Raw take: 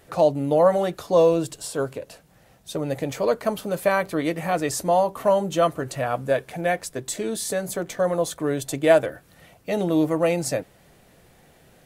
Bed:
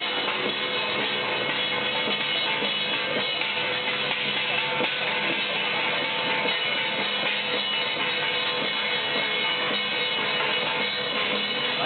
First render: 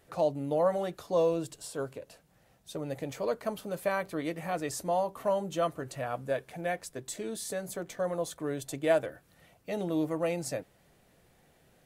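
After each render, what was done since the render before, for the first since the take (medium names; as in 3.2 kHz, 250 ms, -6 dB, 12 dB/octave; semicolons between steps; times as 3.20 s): trim -9.5 dB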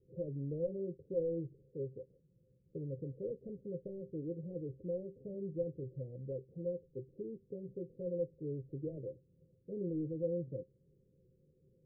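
overload inside the chain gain 25 dB; rippled Chebyshev low-pass 540 Hz, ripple 9 dB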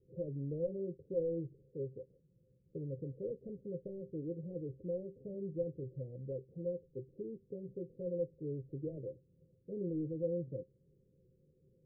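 no audible change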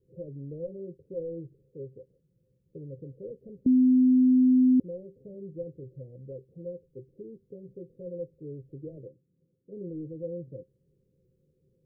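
3.66–4.80 s: bleep 255 Hz -16.5 dBFS; 9.07–9.71 s: band-pass filter 200 Hz -> 300 Hz, Q 1.3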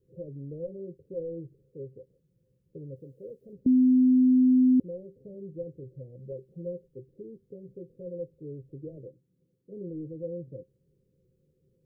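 2.96–3.53 s: tilt EQ +2 dB/octave; 6.19–6.88 s: comb 5.3 ms, depth 69%; 9.06–9.75 s: doubling 16 ms -10.5 dB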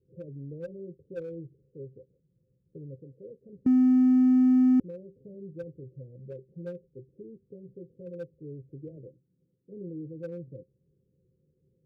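local Wiener filter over 41 samples; high-pass 41 Hz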